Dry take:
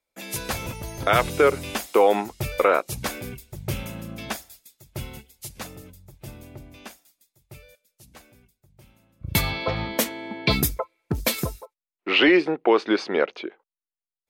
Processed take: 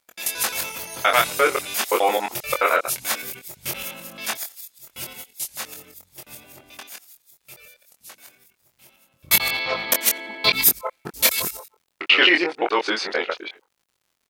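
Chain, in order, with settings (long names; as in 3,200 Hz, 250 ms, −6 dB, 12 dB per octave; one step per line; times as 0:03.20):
reversed piece by piece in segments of 87 ms
high-pass filter 1,300 Hz 6 dB per octave
high-shelf EQ 10,000 Hz +6.5 dB
surface crackle 110 per second −57 dBFS
double-tracking delay 23 ms −4 dB
level +5 dB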